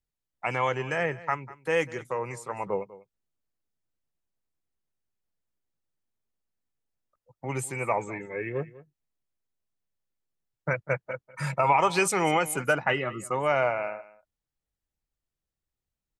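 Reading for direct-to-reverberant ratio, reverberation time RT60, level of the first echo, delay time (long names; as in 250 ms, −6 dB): no reverb audible, no reverb audible, −18.5 dB, 196 ms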